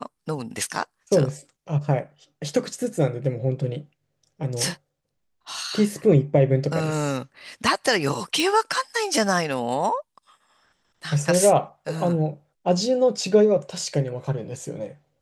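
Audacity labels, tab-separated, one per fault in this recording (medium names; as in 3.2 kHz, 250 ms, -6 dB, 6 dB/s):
8.400000	8.400000	pop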